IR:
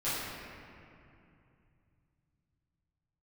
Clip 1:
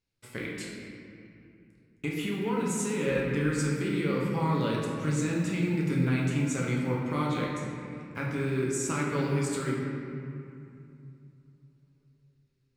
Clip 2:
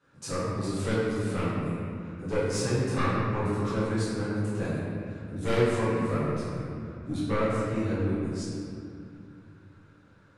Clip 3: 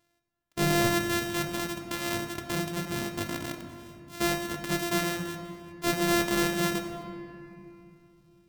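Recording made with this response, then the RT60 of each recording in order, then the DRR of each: 2; 2.6, 2.6, 2.8 s; -4.0, -14.0, 4.5 dB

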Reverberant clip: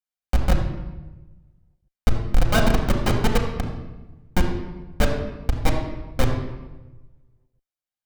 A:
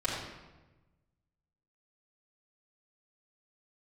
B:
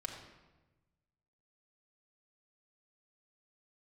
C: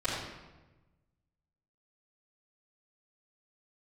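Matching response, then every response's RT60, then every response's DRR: B; 1.1, 1.1, 1.1 s; -9.0, -0.5, -14.0 dB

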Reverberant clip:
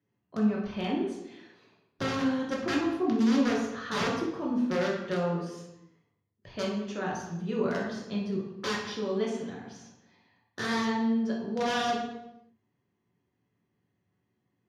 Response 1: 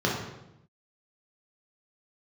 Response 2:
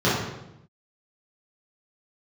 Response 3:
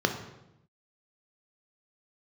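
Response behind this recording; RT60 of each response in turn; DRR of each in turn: 1; 0.85, 0.85, 0.85 s; -3.5, -10.0, 4.5 dB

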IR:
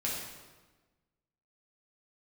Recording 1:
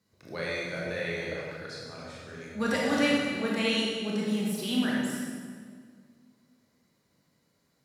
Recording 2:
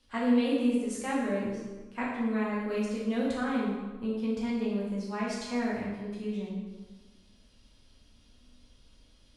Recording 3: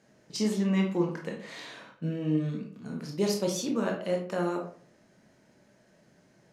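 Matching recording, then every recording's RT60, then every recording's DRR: 2; 1.9, 1.3, 0.45 s; -5.0, -5.5, 1.0 dB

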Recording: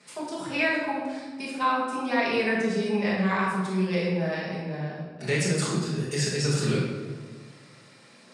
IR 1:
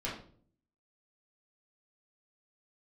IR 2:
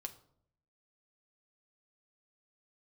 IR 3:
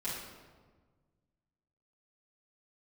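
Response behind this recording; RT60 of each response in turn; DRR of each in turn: 3; 0.50, 0.65, 1.5 s; -7.0, 6.0, -11.5 dB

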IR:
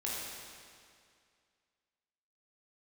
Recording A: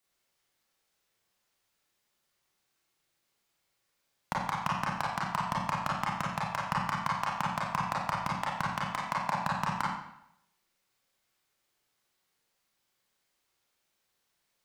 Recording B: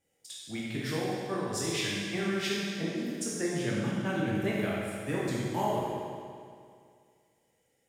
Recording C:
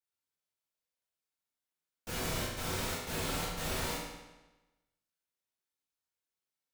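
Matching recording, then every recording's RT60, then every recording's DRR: B; 0.80, 2.2, 1.1 s; -5.0, -6.0, -9.0 dB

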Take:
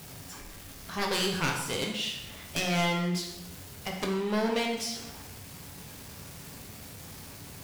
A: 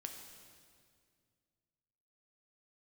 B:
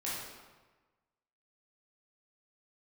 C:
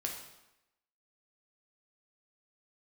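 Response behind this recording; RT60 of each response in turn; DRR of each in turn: C; 2.1, 1.3, 0.90 s; 3.5, -8.0, 0.5 dB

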